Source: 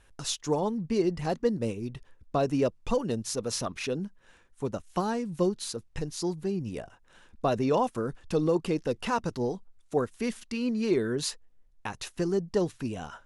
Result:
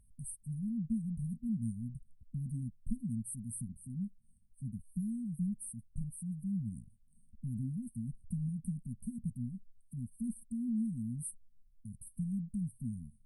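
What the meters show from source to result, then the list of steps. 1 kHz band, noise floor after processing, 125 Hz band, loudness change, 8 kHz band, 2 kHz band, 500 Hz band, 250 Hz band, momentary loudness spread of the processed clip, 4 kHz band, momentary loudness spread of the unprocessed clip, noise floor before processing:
under -40 dB, -65 dBFS, -2.5 dB, -9.5 dB, -8.5 dB, under -40 dB, under -40 dB, -6.5 dB, 9 LU, under -40 dB, 11 LU, -61 dBFS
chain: brick-wall FIR band-stop 250–8100 Hz; trim -2.5 dB

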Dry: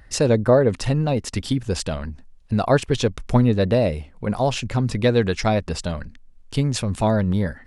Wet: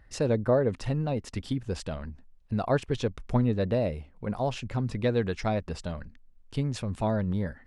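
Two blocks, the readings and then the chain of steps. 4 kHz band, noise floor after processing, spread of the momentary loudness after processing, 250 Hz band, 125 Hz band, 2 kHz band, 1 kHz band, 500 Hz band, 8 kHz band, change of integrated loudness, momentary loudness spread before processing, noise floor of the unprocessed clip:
-12.0 dB, -56 dBFS, 11 LU, -8.0 dB, -8.0 dB, -9.5 dB, -8.5 dB, -8.0 dB, -14.0 dB, -8.0 dB, 10 LU, -48 dBFS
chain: treble shelf 3.9 kHz -8 dB; trim -8 dB

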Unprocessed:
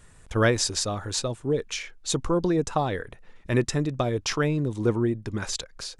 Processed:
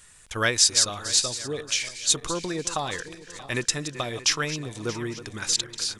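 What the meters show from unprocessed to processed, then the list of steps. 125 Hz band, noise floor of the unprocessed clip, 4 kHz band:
-8.5 dB, -53 dBFS, +7.5 dB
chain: backward echo that repeats 315 ms, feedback 62%, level -13 dB; tilt shelf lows -9 dB, about 1.3 kHz

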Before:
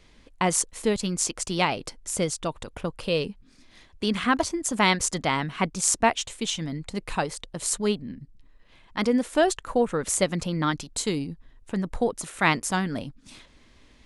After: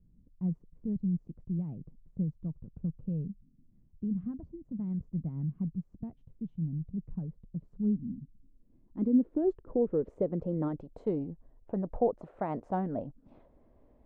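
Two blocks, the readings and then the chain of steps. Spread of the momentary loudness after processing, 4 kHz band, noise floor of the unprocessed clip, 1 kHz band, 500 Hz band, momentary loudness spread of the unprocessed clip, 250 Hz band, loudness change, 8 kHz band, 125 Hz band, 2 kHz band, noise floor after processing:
13 LU, under -40 dB, -56 dBFS, -15.0 dB, -7.5 dB, 11 LU, -3.5 dB, -8.0 dB, under -40 dB, -2.5 dB, under -30 dB, -64 dBFS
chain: peak limiter -14.5 dBFS, peak gain reduction 9.5 dB; low-pass sweep 170 Hz -> 650 Hz, 7.39–11.26 s; trim -6.5 dB

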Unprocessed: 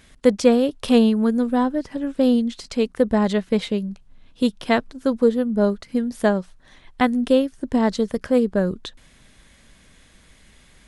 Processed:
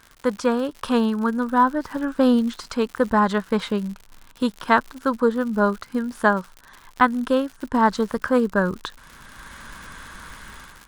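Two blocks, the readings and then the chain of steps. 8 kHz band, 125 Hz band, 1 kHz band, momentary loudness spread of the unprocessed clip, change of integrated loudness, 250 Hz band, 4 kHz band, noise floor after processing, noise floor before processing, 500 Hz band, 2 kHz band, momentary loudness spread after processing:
no reading, -2.0 dB, +7.0 dB, 9 LU, -1.0 dB, -2.5 dB, -2.5 dB, -51 dBFS, -53 dBFS, -3.0 dB, +5.5 dB, 20 LU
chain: level rider gain up to 16 dB; high-order bell 1.2 kHz +13.5 dB 1.1 oct; crackle 130 per s -25 dBFS; trim -7 dB

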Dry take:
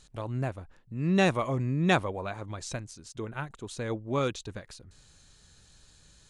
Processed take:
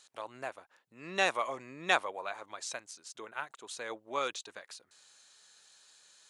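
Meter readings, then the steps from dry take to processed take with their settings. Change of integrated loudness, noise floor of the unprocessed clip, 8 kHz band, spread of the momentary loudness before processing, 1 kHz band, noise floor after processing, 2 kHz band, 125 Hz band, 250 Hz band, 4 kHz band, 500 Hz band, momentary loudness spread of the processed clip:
-5.0 dB, -60 dBFS, 0.0 dB, 18 LU, -1.5 dB, -75 dBFS, 0.0 dB, -26.5 dB, -18.5 dB, 0.0 dB, -6.5 dB, 18 LU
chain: high-pass 700 Hz 12 dB/octave

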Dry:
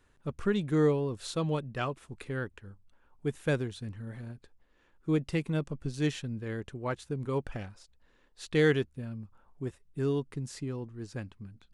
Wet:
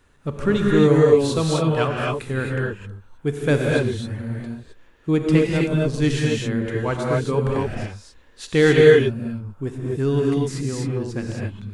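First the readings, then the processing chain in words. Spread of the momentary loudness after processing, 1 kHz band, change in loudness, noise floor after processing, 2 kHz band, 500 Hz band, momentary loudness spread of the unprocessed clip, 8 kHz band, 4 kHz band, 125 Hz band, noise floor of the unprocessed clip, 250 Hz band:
16 LU, +11.5 dB, +12.5 dB, -52 dBFS, +12.5 dB, +14.0 dB, 17 LU, +12.5 dB, +12.0 dB, +12.0 dB, -66 dBFS, +12.0 dB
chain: gated-style reverb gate 290 ms rising, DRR -2.5 dB; trim +8 dB

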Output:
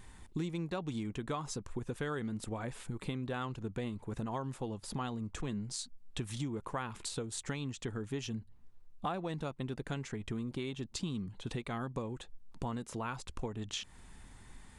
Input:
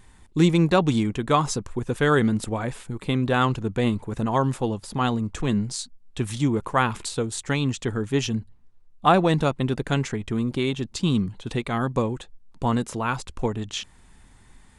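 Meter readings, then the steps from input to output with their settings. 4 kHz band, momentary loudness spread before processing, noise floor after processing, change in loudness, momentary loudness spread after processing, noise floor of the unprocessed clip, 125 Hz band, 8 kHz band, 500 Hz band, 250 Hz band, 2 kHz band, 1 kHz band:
-12.5 dB, 11 LU, -57 dBFS, -15.5 dB, 4 LU, -53 dBFS, -14.5 dB, -10.0 dB, -16.0 dB, -15.5 dB, -16.0 dB, -17.0 dB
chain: compression 5:1, threshold -35 dBFS, peak gain reduction 19.5 dB; trim -1.5 dB

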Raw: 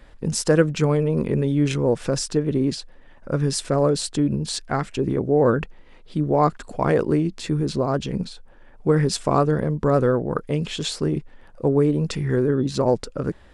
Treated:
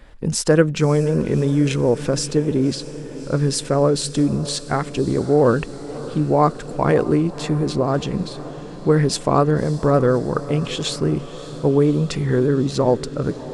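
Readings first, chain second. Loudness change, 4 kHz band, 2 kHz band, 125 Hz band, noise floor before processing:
+2.5 dB, +2.5 dB, +2.5 dB, +3.0 dB, -48 dBFS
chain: echo that smears into a reverb 590 ms, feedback 69%, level -16 dB; trim +2.5 dB

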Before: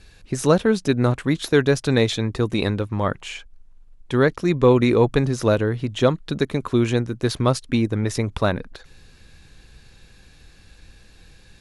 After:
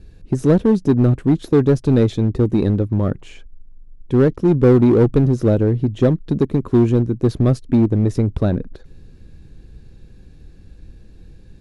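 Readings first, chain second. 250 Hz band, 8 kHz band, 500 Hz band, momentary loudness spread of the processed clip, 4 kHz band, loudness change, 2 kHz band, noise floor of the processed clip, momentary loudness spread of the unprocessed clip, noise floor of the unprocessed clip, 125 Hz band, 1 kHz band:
+6.0 dB, no reading, +2.0 dB, 7 LU, under -10 dB, +4.0 dB, -9.0 dB, -44 dBFS, 7 LU, -51 dBFS, +6.0 dB, -4.0 dB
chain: FFT filter 350 Hz 0 dB, 890 Hz -14 dB, 2.4 kHz -18 dB; in parallel at -9 dB: wavefolder -19.5 dBFS; on the sum: trim +5 dB

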